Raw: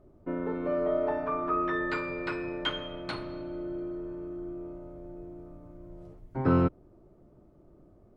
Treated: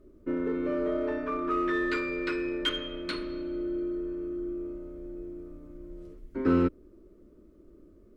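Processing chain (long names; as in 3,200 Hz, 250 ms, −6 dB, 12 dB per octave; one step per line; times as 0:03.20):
phaser with its sweep stopped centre 320 Hz, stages 4
in parallel at −7.5 dB: gain into a clipping stage and back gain 31 dB
on the sum: level +1.5 dB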